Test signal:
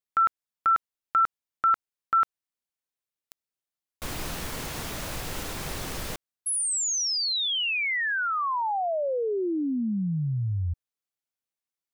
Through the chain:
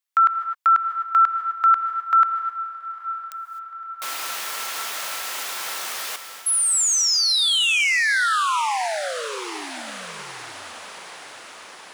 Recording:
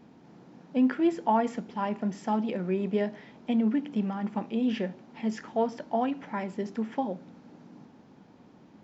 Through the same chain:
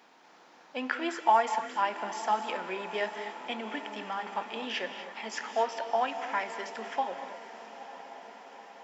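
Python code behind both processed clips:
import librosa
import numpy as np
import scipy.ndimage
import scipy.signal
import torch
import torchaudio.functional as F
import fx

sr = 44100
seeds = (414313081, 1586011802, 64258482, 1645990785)

p1 = scipy.signal.sosfilt(scipy.signal.butter(2, 940.0, 'highpass', fs=sr, output='sos'), x)
p2 = p1 + fx.echo_diffused(p1, sr, ms=920, feedback_pct=64, wet_db=-14.0, dry=0)
p3 = fx.rev_gated(p2, sr, seeds[0], gate_ms=280, shape='rising', drr_db=9.0)
y = p3 * librosa.db_to_amplitude(7.0)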